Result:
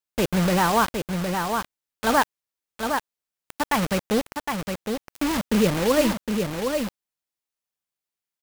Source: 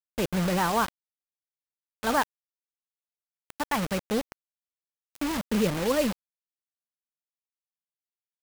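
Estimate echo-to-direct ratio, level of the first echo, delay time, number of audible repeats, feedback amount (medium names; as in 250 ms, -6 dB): -5.5 dB, -5.5 dB, 762 ms, 1, no regular repeats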